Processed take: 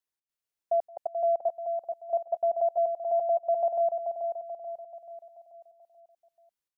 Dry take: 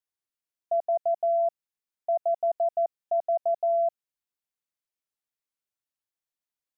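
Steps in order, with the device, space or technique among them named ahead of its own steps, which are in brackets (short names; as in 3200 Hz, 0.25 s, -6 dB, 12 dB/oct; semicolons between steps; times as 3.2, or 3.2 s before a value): trance gate with a delay (step gate "xx.xxxxxx.x." 155 bpm -24 dB; feedback echo 0.434 s, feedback 48%, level -6 dB)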